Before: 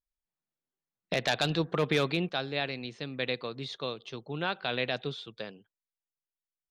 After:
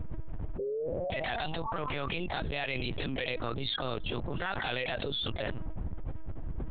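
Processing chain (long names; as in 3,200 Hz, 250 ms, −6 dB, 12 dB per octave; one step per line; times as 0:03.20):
spectral dynamics exaggerated over time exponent 1.5
wind on the microphone 130 Hz −50 dBFS
parametric band 240 Hz −13.5 dB 1.5 octaves
in parallel at −1.5 dB: brickwall limiter −28 dBFS, peak gain reduction 10.5 dB
on the sum: leveller curve on the samples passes 1
sound drawn into the spectrogram rise, 0:00.59–0:02.08, 390–1,200 Hz −40 dBFS
high-frequency loss of the air 170 metres
pitch-shifted copies added +4 semitones −7 dB
linear-prediction vocoder at 8 kHz pitch kept
envelope flattener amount 100%
level −9 dB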